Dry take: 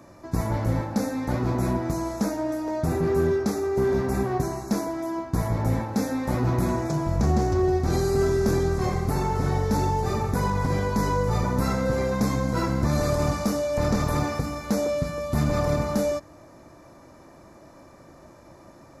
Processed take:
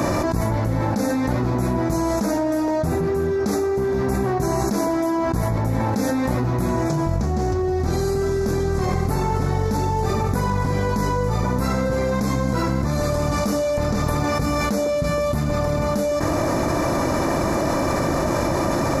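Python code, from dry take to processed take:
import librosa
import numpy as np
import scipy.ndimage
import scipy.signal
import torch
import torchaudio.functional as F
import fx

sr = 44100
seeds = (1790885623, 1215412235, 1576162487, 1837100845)

y = fx.env_flatten(x, sr, amount_pct=100)
y = y * librosa.db_to_amplitude(-2.0)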